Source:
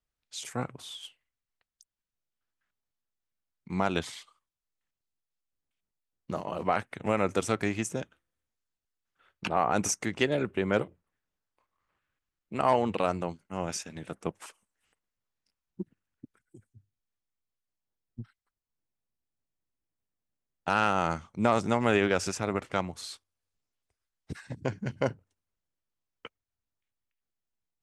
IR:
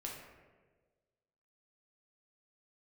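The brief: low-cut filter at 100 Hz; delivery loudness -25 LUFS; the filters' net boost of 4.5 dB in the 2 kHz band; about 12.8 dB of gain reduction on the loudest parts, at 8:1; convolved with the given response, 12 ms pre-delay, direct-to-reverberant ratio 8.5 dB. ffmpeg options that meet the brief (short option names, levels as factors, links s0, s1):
-filter_complex "[0:a]highpass=100,equalizer=f=2000:t=o:g=6,acompressor=threshold=0.0282:ratio=8,asplit=2[s0][s1];[1:a]atrim=start_sample=2205,adelay=12[s2];[s1][s2]afir=irnorm=-1:irlink=0,volume=0.422[s3];[s0][s3]amix=inputs=2:normalize=0,volume=4.47"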